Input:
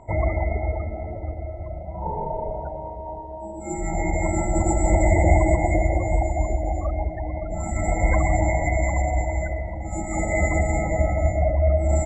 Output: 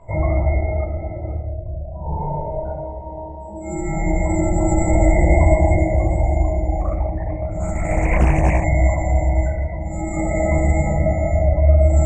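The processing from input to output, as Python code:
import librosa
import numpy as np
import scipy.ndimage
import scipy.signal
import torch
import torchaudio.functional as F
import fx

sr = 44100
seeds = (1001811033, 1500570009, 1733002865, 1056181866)

y = fx.envelope_sharpen(x, sr, power=2.0, at=(1.37, 2.19))
y = fx.room_shoebox(y, sr, seeds[0], volume_m3=1000.0, walls='furnished', distance_m=5.4)
y = fx.doppler_dist(y, sr, depth_ms=0.62, at=(6.8, 8.64))
y = y * librosa.db_to_amplitude(-5.0)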